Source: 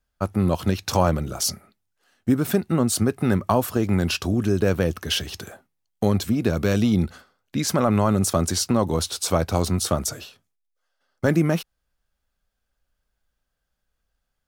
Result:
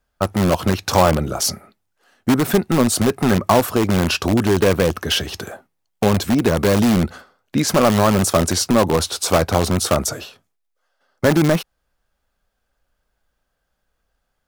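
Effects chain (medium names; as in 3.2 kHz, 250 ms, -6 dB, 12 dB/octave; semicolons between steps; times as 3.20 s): peaking EQ 680 Hz +6 dB 3 oct; in parallel at -6 dB: integer overflow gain 12 dB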